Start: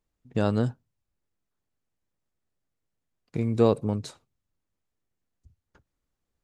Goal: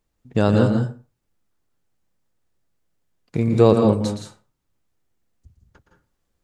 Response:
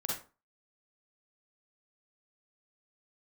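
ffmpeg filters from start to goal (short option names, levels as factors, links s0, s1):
-filter_complex "[0:a]asplit=2[s0][s1];[1:a]atrim=start_sample=2205,adelay=117[s2];[s1][s2]afir=irnorm=-1:irlink=0,volume=0.447[s3];[s0][s3]amix=inputs=2:normalize=0,volume=2.11"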